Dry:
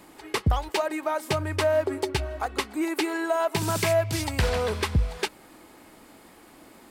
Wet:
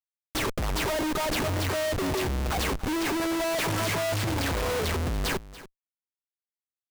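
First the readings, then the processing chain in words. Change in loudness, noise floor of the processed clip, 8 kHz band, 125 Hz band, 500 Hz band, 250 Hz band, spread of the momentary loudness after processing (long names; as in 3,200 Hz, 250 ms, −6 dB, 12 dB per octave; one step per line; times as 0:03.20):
−1.0 dB, below −85 dBFS, +1.5 dB, −1.5 dB, −3.5 dB, +0.5 dB, 4 LU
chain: all-pass dispersion lows, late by 122 ms, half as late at 2,200 Hz
comparator with hysteresis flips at −32 dBFS
single-tap delay 287 ms −17 dB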